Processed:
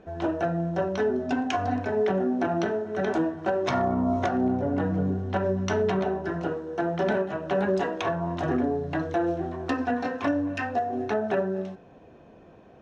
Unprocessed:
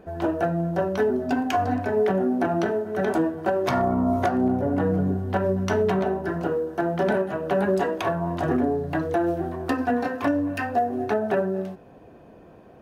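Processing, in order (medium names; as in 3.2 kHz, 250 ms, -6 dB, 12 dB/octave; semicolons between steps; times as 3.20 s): low-pass 6 kHz 24 dB/octave; treble shelf 4.2 kHz +8 dB; band-stop 4.7 kHz, Q 8.2; de-hum 60.02 Hz, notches 32; trim -2.5 dB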